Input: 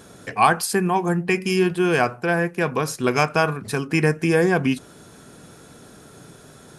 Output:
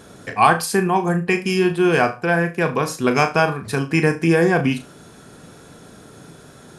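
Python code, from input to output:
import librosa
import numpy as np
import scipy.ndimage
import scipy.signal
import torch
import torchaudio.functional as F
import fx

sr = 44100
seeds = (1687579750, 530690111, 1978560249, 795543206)

p1 = fx.high_shelf(x, sr, hz=6700.0, db=-4.5)
p2 = p1 + fx.room_flutter(p1, sr, wall_m=6.2, rt60_s=0.25, dry=0)
y = F.gain(torch.from_numpy(p2), 2.0).numpy()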